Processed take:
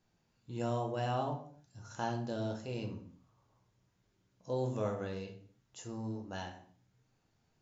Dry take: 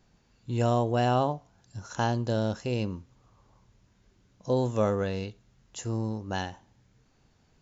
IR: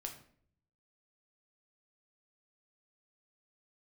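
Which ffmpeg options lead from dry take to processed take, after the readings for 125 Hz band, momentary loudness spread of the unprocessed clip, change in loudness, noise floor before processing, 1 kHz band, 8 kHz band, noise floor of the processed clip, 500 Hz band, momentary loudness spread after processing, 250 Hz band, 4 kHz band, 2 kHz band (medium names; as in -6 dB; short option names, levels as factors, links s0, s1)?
-10.0 dB, 18 LU, -9.0 dB, -66 dBFS, -9.0 dB, no reading, -77 dBFS, -9.0 dB, 20 LU, -9.5 dB, -9.5 dB, -9.5 dB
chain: -filter_complex "[0:a]lowshelf=f=63:g=-11.5[s0];[1:a]atrim=start_sample=2205,afade=t=out:st=0.36:d=0.01,atrim=end_sample=16317[s1];[s0][s1]afir=irnorm=-1:irlink=0,volume=0.473"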